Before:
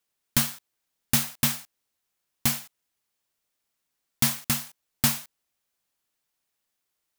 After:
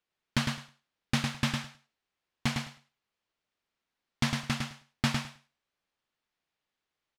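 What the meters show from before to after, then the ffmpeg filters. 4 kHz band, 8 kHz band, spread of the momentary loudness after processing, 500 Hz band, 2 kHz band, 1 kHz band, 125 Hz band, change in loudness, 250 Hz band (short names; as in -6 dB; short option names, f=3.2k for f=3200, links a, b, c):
-4.0 dB, -14.0 dB, 11 LU, 0.0 dB, -0.5 dB, 0.0 dB, 0.0 dB, -7.0 dB, -0.5 dB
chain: -af "lowpass=3.7k,aecho=1:1:106|212|318:0.596|0.0893|0.0134,volume=-1.5dB"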